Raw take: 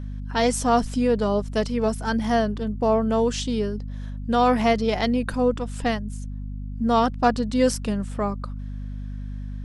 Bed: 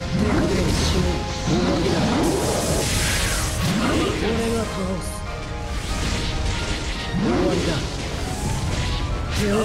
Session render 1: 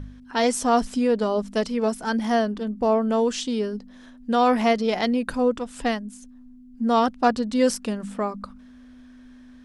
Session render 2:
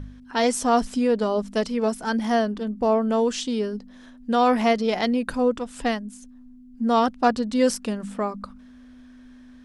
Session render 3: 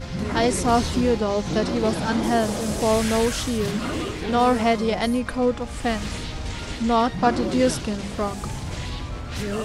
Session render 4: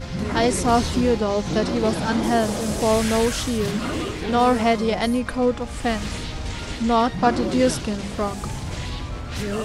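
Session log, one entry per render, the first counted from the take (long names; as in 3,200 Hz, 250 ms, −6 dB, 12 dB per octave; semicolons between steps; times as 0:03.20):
hum removal 50 Hz, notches 4
no processing that can be heard
mix in bed −7 dB
level +1 dB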